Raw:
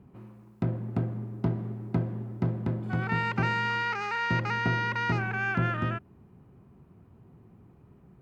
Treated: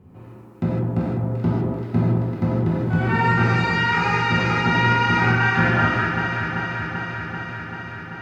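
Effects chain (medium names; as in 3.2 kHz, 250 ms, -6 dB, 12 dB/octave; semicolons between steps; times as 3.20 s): echo whose repeats swap between lows and highs 194 ms, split 1.3 kHz, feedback 87%, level -5 dB; gated-style reverb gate 180 ms flat, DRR -6 dB; trim +2 dB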